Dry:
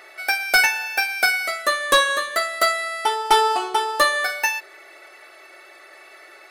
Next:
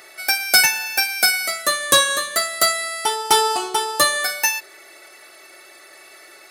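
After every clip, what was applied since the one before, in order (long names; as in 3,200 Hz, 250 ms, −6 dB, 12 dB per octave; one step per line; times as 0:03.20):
high-pass filter 85 Hz 24 dB per octave
bass and treble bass +14 dB, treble +12 dB
level −1.5 dB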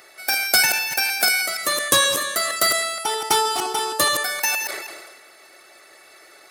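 delay that plays each chunk backwards 157 ms, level −7.5 dB
harmonic and percussive parts rebalanced percussive +7 dB
level that may fall only so fast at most 39 dB per second
level −6.5 dB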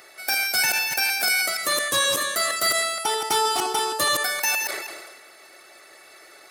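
brickwall limiter −12.5 dBFS, peak gain reduction 10.5 dB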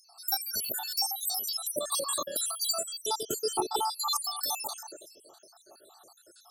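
time-frequency cells dropped at random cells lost 73%
Butterworth band-reject 2,100 Hz, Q 0.79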